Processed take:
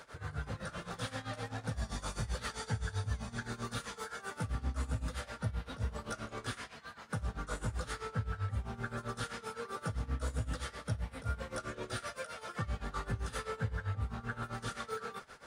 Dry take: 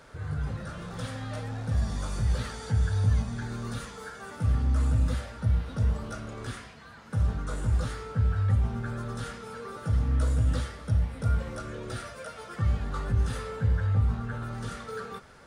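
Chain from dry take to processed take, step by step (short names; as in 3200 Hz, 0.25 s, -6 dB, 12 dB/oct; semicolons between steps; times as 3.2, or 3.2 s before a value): low shelf 360 Hz -9.5 dB; compressor 2:1, threshold -37 dBFS, peak gain reduction 6 dB; tremolo 7.7 Hz, depth 86%; gain +4.5 dB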